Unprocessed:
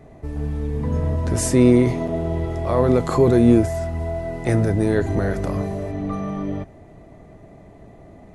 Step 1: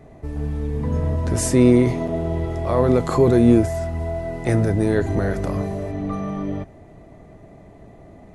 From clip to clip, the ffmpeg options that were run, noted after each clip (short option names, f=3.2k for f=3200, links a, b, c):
-af anull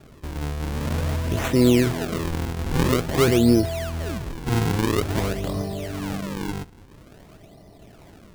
-af "acrusher=samples=42:mix=1:aa=0.000001:lfo=1:lforange=67.2:lforate=0.49,volume=-3dB"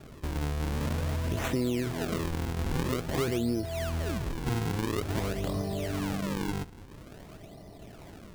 -af "acompressor=threshold=-28dB:ratio=4"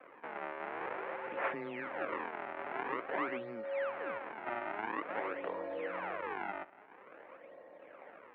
-af "highpass=f=580:t=q:w=0.5412,highpass=f=580:t=q:w=1.307,lowpass=f=2.4k:t=q:w=0.5176,lowpass=f=2.4k:t=q:w=0.7071,lowpass=f=2.4k:t=q:w=1.932,afreqshift=-110,volume=1.5dB"